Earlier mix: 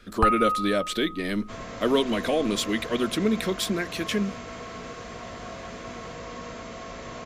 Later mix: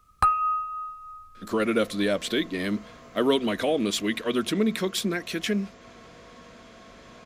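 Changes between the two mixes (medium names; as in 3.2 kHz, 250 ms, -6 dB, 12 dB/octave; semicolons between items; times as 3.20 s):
speech: entry +1.35 s; first sound: add tilt EQ +2 dB/octave; second sound -11.0 dB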